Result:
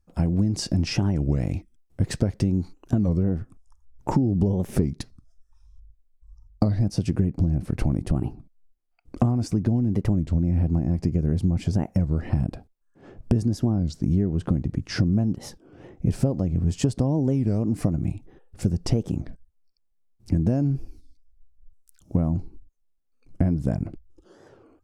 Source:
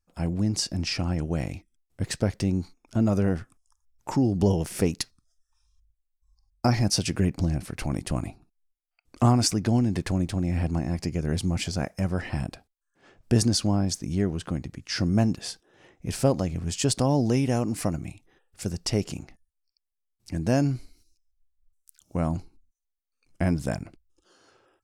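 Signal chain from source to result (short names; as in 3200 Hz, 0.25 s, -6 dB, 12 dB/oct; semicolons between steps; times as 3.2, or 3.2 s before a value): tilt shelf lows +6 dB, about 830 Hz, from 3.09 s lows +10 dB; compressor 12:1, threshold -24 dBFS, peak gain reduction 18 dB; record warp 33 1/3 rpm, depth 250 cents; gain +6 dB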